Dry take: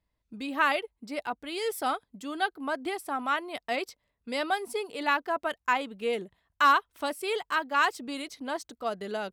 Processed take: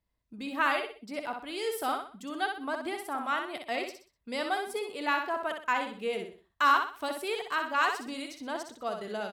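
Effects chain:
repeating echo 62 ms, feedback 35%, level −5.5 dB
level −3 dB

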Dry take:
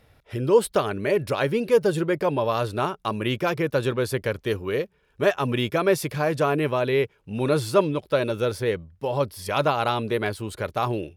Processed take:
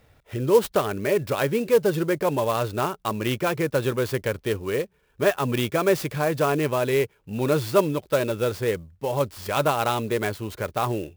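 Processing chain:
converter with an unsteady clock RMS 0.028 ms

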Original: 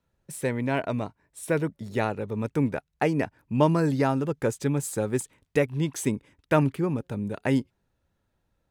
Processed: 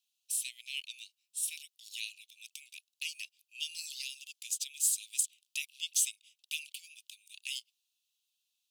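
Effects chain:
Butterworth high-pass 2,700 Hz 72 dB per octave
level +6.5 dB

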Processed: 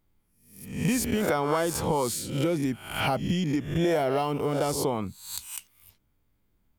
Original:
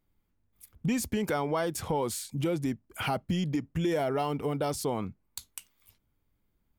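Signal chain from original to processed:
peak hold with a rise ahead of every peak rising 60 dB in 0.60 s
level +2 dB

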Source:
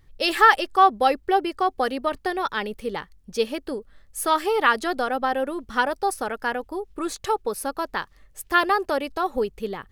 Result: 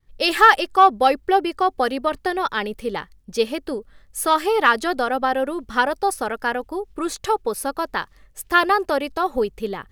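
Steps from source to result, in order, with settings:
downward expander −49 dBFS
in parallel at −7.5 dB: asymmetric clip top −10.5 dBFS

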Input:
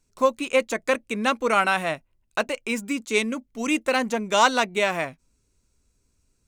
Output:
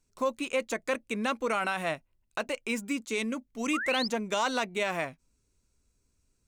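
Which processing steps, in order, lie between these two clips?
brickwall limiter −14.5 dBFS, peak gain reduction 8 dB
sound drawn into the spectrogram rise, 0:03.73–0:04.08, 1,100–5,400 Hz −29 dBFS
level −4.5 dB

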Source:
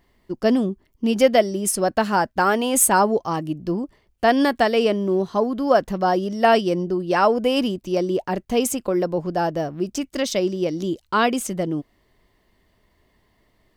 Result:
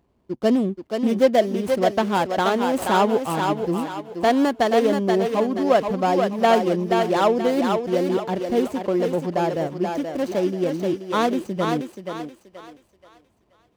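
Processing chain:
running median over 25 samples
high-pass filter 64 Hz
on a send: feedback echo with a high-pass in the loop 479 ms, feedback 38%, high-pass 410 Hz, level −3.5 dB

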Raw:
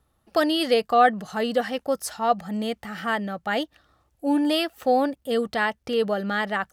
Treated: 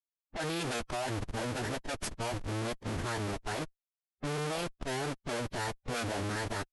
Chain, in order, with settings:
comparator with hysteresis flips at −31.5 dBFS
phase-vocoder pitch shift with formants kept −11.5 semitones
low-pass that shuts in the quiet parts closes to 1,600 Hz, open at −23 dBFS
level −9 dB

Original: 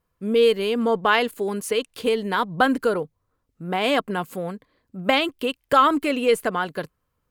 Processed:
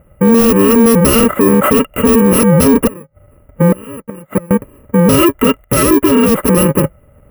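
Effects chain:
samples in bit-reversed order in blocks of 64 samples
0:02.87–0:04.51: gate with flip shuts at −21 dBFS, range −31 dB
Butterworth band-reject 4,900 Hz, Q 0.6
hollow resonant body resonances 580/1,300/2,000/2,800 Hz, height 16 dB, ringing for 35 ms
gain into a clipping stage and back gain 20.5 dB
high-pass filter 69 Hz 6 dB per octave
spectral tilt −2.5 dB per octave
boost into a limiter +26 dB
0:05.64–0:06.48: expander for the loud parts 1.5 to 1, over −22 dBFS
level −1 dB

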